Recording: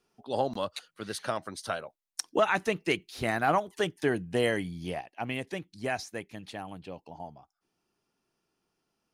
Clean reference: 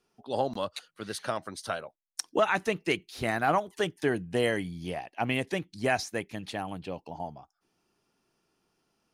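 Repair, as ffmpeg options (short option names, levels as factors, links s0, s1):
-af "asetnsamples=n=441:p=0,asendcmd='5.01 volume volume 5dB',volume=1"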